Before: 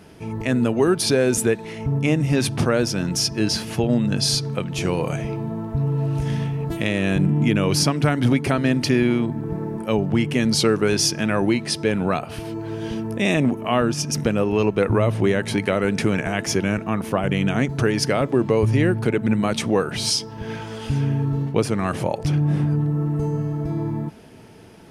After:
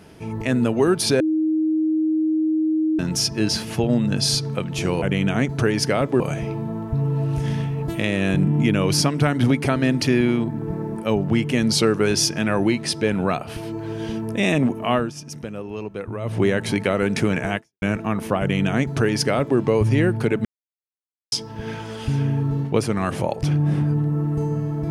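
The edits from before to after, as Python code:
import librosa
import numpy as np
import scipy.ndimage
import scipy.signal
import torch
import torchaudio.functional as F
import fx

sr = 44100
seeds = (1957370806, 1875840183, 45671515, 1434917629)

y = fx.edit(x, sr, fx.bleep(start_s=1.2, length_s=1.79, hz=314.0, db=-17.0),
    fx.fade_down_up(start_s=13.76, length_s=1.45, db=-11.5, fade_s=0.18),
    fx.fade_out_span(start_s=16.38, length_s=0.26, curve='exp'),
    fx.duplicate(start_s=17.22, length_s=1.18, to_s=5.02),
    fx.silence(start_s=19.27, length_s=0.87), tone=tone)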